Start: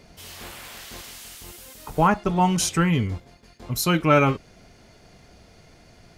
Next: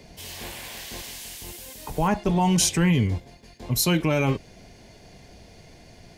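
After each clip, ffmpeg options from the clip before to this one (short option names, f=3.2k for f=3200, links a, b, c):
-filter_complex "[0:a]equalizer=f=1.3k:t=o:w=0.29:g=-12.5,acrossover=split=100|4300[a][b][c];[b]alimiter=limit=-17dB:level=0:latency=1:release=30[d];[a][d][c]amix=inputs=3:normalize=0,volume=3dB"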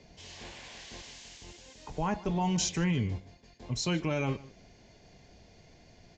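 -filter_complex "[0:a]aresample=16000,aresample=44100,asplit=2[a][b];[b]adelay=151.6,volume=-20dB,highshelf=f=4k:g=-3.41[c];[a][c]amix=inputs=2:normalize=0,volume=-8.5dB"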